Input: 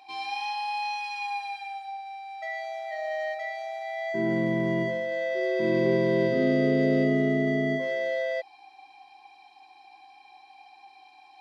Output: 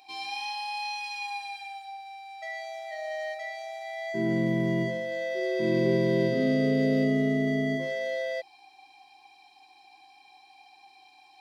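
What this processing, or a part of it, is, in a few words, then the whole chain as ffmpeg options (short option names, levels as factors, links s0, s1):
smiley-face EQ: -af "lowshelf=f=140:g=5,equalizer=f=1100:t=o:w=2:g=-5.5,highshelf=f=5300:g=7.5,bandreject=f=50:t=h:w=6,bandreject=f=100:t=h:w=6,bandreject=f=150:t=h:w=6,bandreject=f=200:t=h:w=6,bandreject=f=250:t=h:w=6,bandreject=f=300:t=h:w=6,bandreject=f=350:t=h:w=6"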